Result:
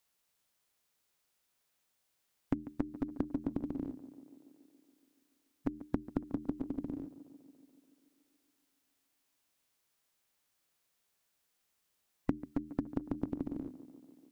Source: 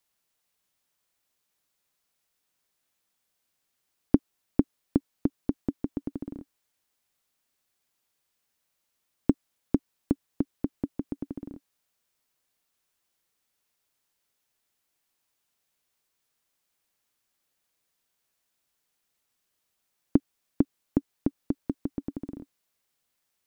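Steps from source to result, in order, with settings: de-hum 49.99 Hz, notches 7; compressor 2.5:1, threshold -29 dBFS, peak gain reduction 10 dB; time stretch by phase-locked vocoder 0.61×; on a send: tape echo 0.142 s, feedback 79%, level -13 dB, low-pass 1600 Hz; on the sum: gain +1 dB

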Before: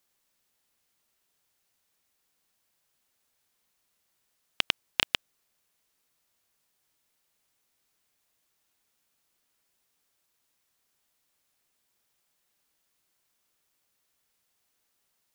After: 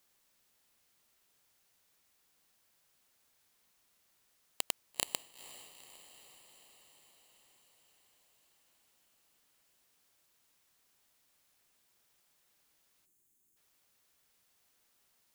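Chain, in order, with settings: wrapped overs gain 17.5 dB; spectral delete 13.06–13.57, 410–6200 Hz; diffused feedback echo 0.464 s, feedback 66%, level -14.5 dB; gain +2.5 dB

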